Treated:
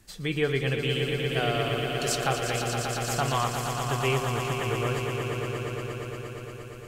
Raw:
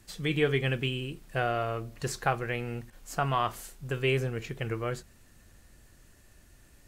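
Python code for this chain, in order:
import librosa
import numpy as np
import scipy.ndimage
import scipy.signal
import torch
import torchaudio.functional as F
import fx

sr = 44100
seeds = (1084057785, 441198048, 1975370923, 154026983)

y = fx.high_shelf_res(x, sr, hz=2800.0, db=7.0, q=1.5, at=(0.89, 3.37))
y = fx.echo_swell(y, sr, ms=117, loudest=5, wet_db=-8.0)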